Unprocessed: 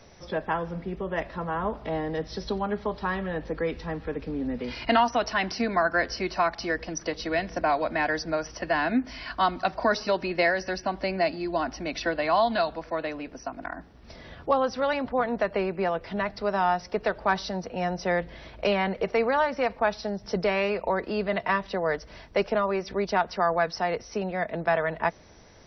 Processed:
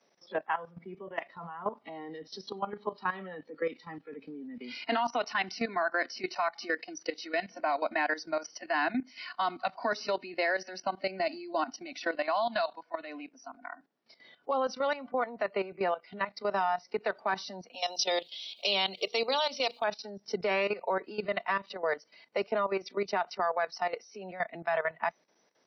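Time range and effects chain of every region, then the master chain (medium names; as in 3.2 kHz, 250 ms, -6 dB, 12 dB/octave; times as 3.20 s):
17.73–19.84 s: high-pass 210 Hz 6 dB/octave + resonant high shelf 2.5 kHz +11.5 dB, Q 3 + hum notches 60/120/180/240/300/360/420/480 Hz
whole clip: Bessel high-pass 280 Hz, order 8; spectral noise reduction 14 dB; level held to a coarse grid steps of 14 dB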